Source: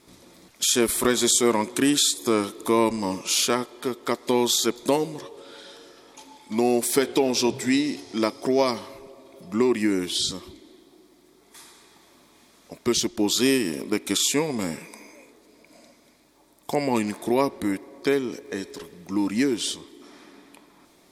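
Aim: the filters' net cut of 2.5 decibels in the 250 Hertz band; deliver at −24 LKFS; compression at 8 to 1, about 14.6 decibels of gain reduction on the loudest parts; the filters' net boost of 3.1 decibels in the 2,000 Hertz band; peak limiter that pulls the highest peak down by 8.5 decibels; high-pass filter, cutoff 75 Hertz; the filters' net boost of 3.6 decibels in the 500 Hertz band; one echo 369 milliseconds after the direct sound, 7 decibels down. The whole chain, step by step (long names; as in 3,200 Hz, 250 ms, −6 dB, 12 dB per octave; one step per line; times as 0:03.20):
high-pass filter 75 Hz
parametric band 250 Hz −6.5 dB
parametric band 500 Hz +7 dB
parametric band 2,000 Hz +3.5 dB
downward compressor 8 to 1, threshold −28 dBFS
brickwall limiter −22 dBFS
single-tap delay 369 ms −7 dB
level +9.5 dB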